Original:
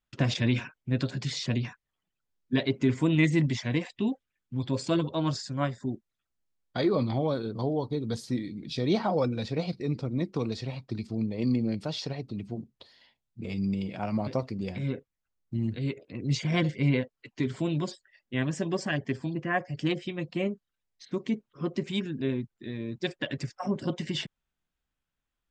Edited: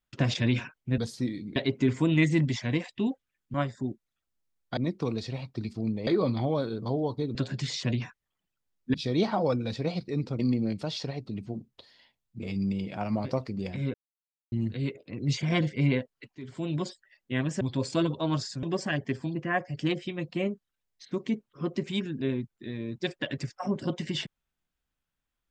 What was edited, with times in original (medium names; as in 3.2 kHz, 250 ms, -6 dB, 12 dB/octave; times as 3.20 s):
0.98–2.57 s: swap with 8.08–8.66 s
4.55–5.57 s: move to 18.63 s
10.11–11.41 s: move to 6.80 s
14.96–15.54 s: mute
17.37–17.84 s: fade in, from -20 dB